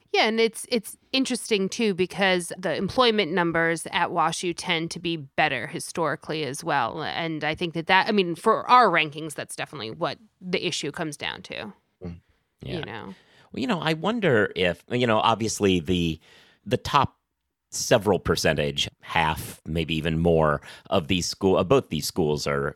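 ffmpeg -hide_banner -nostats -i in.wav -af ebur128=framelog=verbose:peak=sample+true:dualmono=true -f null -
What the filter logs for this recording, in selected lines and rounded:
Integrated loudness:
  I:         -21.2 LUFS
  Threshold: -31.6 LUFS
Loudness range:
  LRA:         8.5 LU
  Threshold: -41.7 LUFS
  LRA low:   -28.1 LUFS
  LRA high:  -19.6 LUFS
Sample peak:
  Peak:       -3.4 dBFS
True peak:
  Peak:       -3.4 dBFS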